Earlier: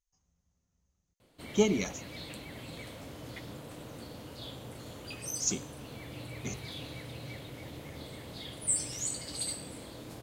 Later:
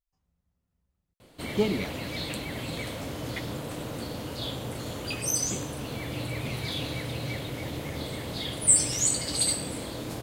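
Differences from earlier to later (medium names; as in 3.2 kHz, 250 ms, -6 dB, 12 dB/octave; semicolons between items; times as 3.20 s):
speech: remove resonant low-pass 6.4 kHz, resonance Q 8.6; background +10.0 dB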